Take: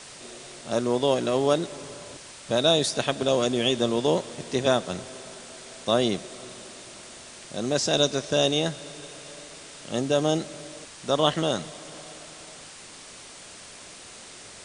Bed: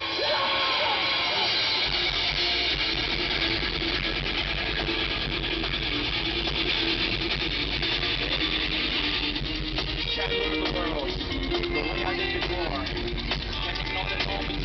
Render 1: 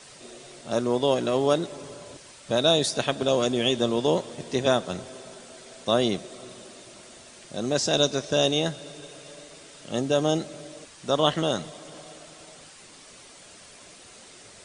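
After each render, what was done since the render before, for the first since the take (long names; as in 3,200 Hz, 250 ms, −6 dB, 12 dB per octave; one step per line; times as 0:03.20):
broadband denoise 6 dB, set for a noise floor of −45 dBFS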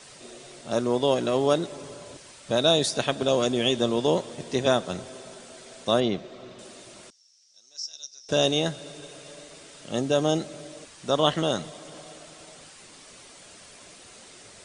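0:06.00–0:06.59: high-frequency loss of the air 160 metres
0:07.10–0:08.29: resonant band-pass 5,500 Hz, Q 12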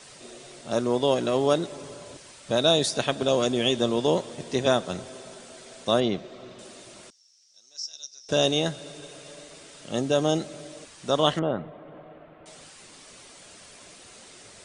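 0:11.39–0:12.46: Gaussian smoothing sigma 4.3 samples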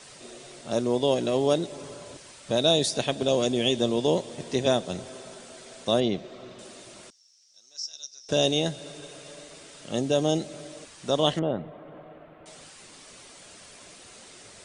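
dynamic equaliser 1,300 Hz, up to −8 dB, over −43 dBFS, Q 1.6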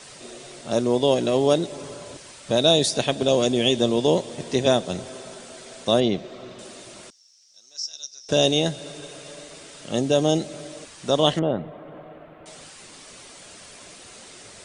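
level +4 dB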